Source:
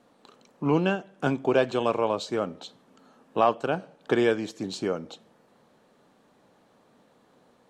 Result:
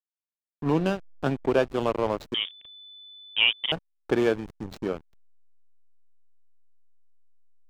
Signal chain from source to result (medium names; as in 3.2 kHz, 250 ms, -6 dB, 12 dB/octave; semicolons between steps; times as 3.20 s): hysteresis with a dead band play -25 dBFS; 2.34–3.72 s: frequency inversion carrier 3.5 kHz